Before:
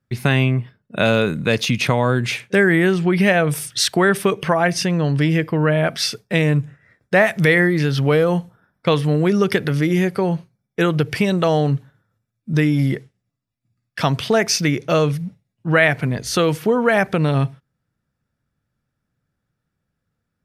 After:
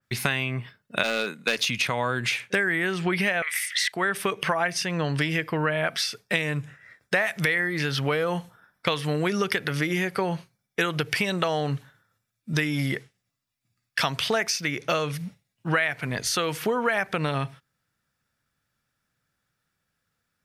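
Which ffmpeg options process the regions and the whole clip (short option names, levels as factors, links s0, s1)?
-filter_complex "[0:a]asettb=1/sr,asplit=3[s0][s1][s2];[s0]atrim=end=1.034[s3];[s1]atrim=start=1.03:end=1.58,asetpts=PTS-STARTPTS,afade=t=in:d=0.004:c=qsin,afade=t=out:st=0.546:d=0.004:c=qsin,agate=range=0.0224:threshold=0.126:ratio=3:release=100:detection=peak,highpass=f=190:w=0.5412,highpass=f=190:w=1.3066,aeval=exprs='clip(val(0),-1,0.178)':c=same[s4];[s2]atrim=start=1.576[s5];[s3][s4]acrossfade=d=0.004:c1=hsin:c2=qsin[s6];[s6][s5]acrossfade=d=0.004:c1=qsin:c2=hsin,asettb=1/sr,asplit=3[s7][s8][s9];[s7]atrim=end=3.424[s10];[s8]atrim=start=3.42:end=3.92,asetpts=PTS-STARTPTS,afade=t=in:d=0.004:c=qsin,afade=t=out:st=0.496:d=0.004:c=qsin,highpass=f=2000:t=q:w=16,acompressor=mode=upward:threshold=0.0398:ratio=2.5:attack=3.2:release=140:knee=2.83:detection=peak[s11];[s9]atrim=start=3.916[s12];[s10][s11]acrossfade=d=0.004:c1=hsin:c2=qsin[s13];[s13][s12]acrossfade=d=0.004:c1=qsin:c2=hsin,tiltshelf=f=750:g=-7.5,acompressor=threshold=0.0891:ratio=6,adynamicequalizer=threshold=0.0141:dfrequency=2900:dqfactor=0.7:tfrequency=2900:tqfactor=0.7:attack=5:release=100:ratio=0.375:range=3:mode=cutabove:tftype=highshelf"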